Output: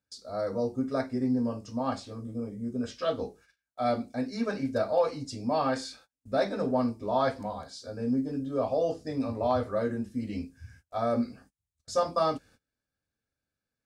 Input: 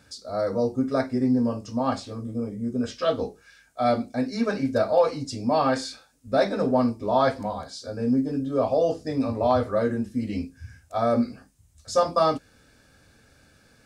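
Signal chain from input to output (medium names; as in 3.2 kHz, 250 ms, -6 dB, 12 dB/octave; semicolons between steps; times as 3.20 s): gate -49 dBFS, range -26 dB; trim -5.5 dB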